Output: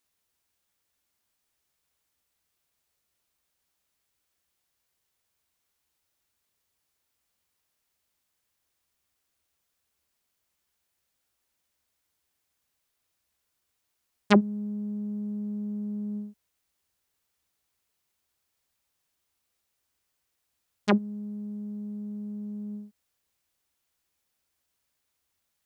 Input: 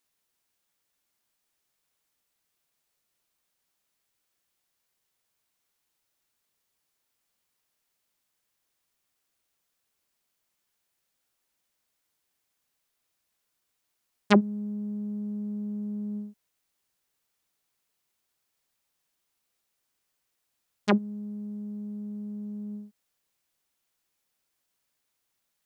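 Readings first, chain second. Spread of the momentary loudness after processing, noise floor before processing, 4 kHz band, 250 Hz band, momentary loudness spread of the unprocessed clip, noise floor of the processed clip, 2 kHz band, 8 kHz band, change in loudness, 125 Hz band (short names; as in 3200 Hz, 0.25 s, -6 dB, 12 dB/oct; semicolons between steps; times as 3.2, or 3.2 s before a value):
15 LU, -79 dBFS, 0.0 dB, +0.5 dB, 15 LU, -79 dBFS, 0.0 dB, n/a, +0.5 dB, +0.5 dB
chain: bell 71 Hz +11 dB 0.62 oct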